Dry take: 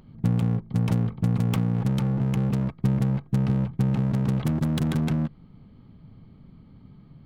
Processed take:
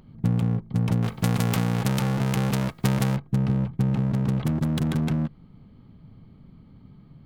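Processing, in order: 1.02–3.15 spectral whitening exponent 0.6

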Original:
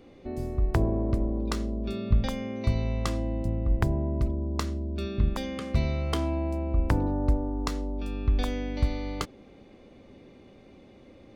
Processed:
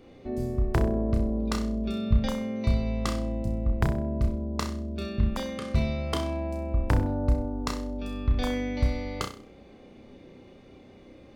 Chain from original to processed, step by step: flutter echo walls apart 5.5 m, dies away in 0.38 s

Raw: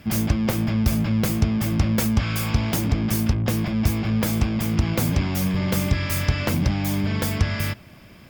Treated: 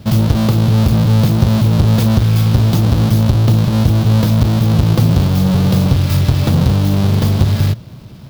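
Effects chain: half-waves squared off; graphic EQ 125/2000/4000/8000 Hz +11/-7/+6/-6 dB; in parallel at -1 dB: limiter -8.5 dBFS, peak gain reduction 9 dB; on the sum: gain -4.5 dB

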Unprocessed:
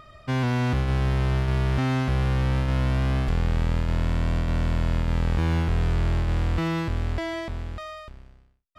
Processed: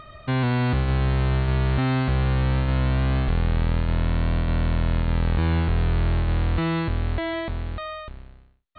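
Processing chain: in parallel at -3 dB: compressor, threshold -32 dBFS, peak gain reduction 12.5 dB; on the sum: brick-wall FIR low-pass 4500 Hz

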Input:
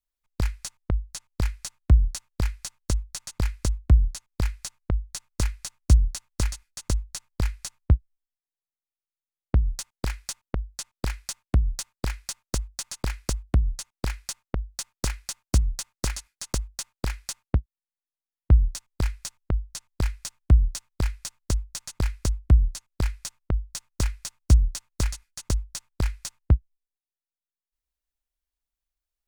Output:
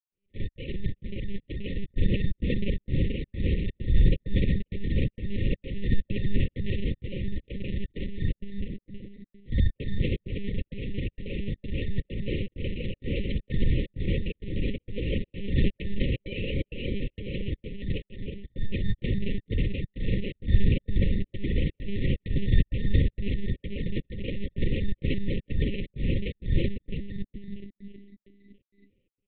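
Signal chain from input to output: short-time reversal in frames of 0.109 s; painted sound rise, 16.23–16.7, 440–2200 Hz -38 dBFS; in parallel at +2 dB: compressor 12:1, threshold -33 dBFS, peak gain reduction 19.5 dB; on the sum: sample-rate reducer 1800 Hz, jitter 0%; frequency-shifting echo 0.325 s, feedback 52%, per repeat +31 Hz, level -3 dB; step gate ".xxx.xxx" 130 bpm -60 dB; transient shaper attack -9 dB, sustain +10 dB; monotone LPC vocoder at 8 kHz 200 Hz; brick-wall FIR band-stop 570–1800 Hz

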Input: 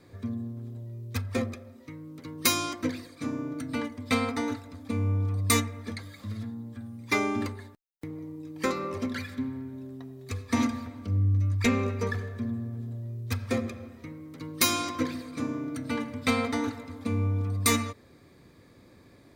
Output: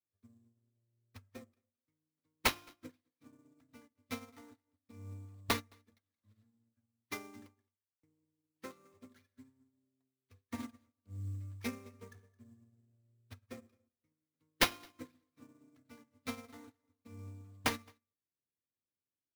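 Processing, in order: high shelf 9200 Hz +8.5 dB; sample-rate reducer 7900 Hz, jitter 20%; echo 0.217 s -14 dB; upward expander 2.5:1, over -44 dBFS; gain -6.5 dB

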